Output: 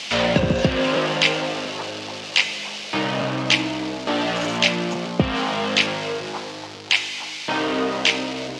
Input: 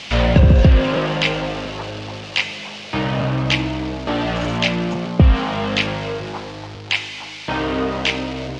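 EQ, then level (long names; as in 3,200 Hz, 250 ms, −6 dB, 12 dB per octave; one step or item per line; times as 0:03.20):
high-pass filter 210 Hz 12 dB per octave
high-shelf EQ 5,000 Hz +11 dB
−1.0 dB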